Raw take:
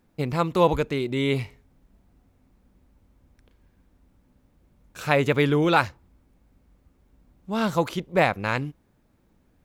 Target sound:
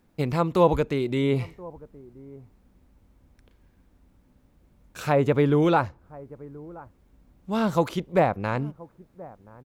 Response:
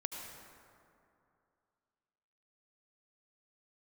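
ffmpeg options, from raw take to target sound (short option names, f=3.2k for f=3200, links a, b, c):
-filter_complex "[0:a]acrossover=split=1200[a][b];[a]aecho=1:1:1027:0.0891[c];[b]acompressor=threshold=-36dB:ratio=10[d];[c][d]amix=inputs=2:normalize=0,volume=1dB"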